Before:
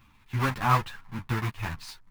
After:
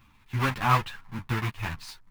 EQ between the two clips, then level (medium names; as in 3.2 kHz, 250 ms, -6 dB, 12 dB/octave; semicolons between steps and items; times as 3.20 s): dynamic bell 2.8 kHz, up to +4 dB, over -43 dBFS, Q 1.4; 0.0 dB